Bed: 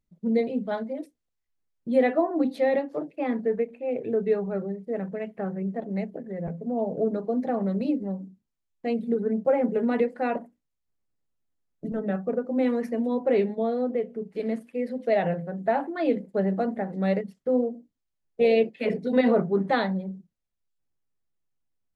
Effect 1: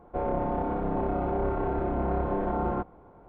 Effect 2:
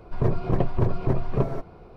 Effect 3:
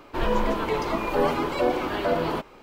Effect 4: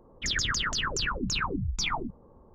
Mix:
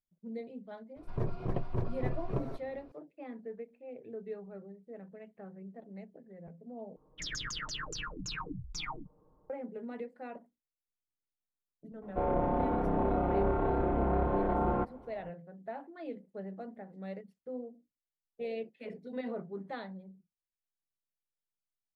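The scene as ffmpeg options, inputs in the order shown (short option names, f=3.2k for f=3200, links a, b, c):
-filter_complex "[0:a]volume=-17.5dB[a];[4:a]aecho=1:1:6.5:0.68[b];[a]asplit=2[c][d];[c]atrim=end=6.964[e];[b]atrim=end=2.54,asetpts=PTS-STARTPTS,volume=-12dB[f];[d]atrim=start=9.496[g];[2:a]atrim=end=1.96,asetpts=PTS-STARTPTS,volume=-11dB,afade=t=in:d=0.004:c=hsin,afade=t=out:st=1.956:d=0.004:c=hsin,adelay=960[h];[1:a]atrim=end=3.28,asetpts=PTS-STARTPTS,volume=-1.5dB,afade=t=in:d=0.004:c=hsin,afade=t=out:st=3.276:d=0.004:c=hsin,adelay=12020[i];[e][f]acrossfade=d=0.004:c1=hsin:c2=hsin[j];[j][g]acrossfade=d=0.004:c1=hsin:c2=hsin[k];[k][h][i]amix=inputs=3:normalize=0"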